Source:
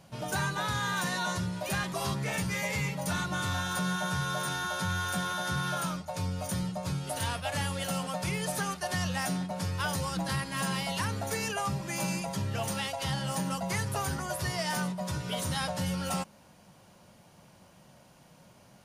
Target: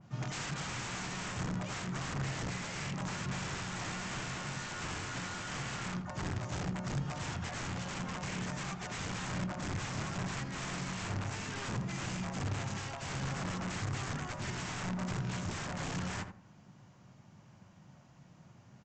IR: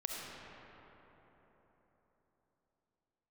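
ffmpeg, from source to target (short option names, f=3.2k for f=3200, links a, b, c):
-filter_complex "[0:a]asplit=4[a][b][c][d];[b]asetrate=52444,aresample=44100,atempo=0.840896,volume=-9dB[e];[c]asetrate=58866,aresample=44100,atempo=0.749154,volume=-10dB[f];[d]asetrate=88200,aresample=44100,atempo=0.5,volume=-10dB[g];[a][e][f][g]amix=inputs=4:normalize=0,aresample=16000,aeval=exprs='(mod(22.4*val(0)+1,2)-1)/22.4':c=same,aresample=44100,equalizer=f=125:t=o:w=1:g=9,equalizer=f=500:t=o:w=1:g=-5,equalizer=f=4k:t=o:w=1:g=-5,asplit=2[h][i];[i]adelay=82,lowpass=f=1.3k:p=1,volume=-7dB,asplit=2[j][k];[k]adelay=82,lowpass=f=1.3k:p=1,volume=0.26,asplit=2[l][m];[m]adelay=82,lowpass=f=1.3k:p=1,volume=0.26[n];[h][j][l][n]amix=inputs=4:normalize=0,adynamicequalizer=threshold=0.00316:dfrequency=2800:dqfactor=0.7:tfrequency=2800:tqfactor=0.7:attack=5:release=100:ratio=0.375:range=2:mode=cutabove:tftype=highshelf,volume=-5.5dB"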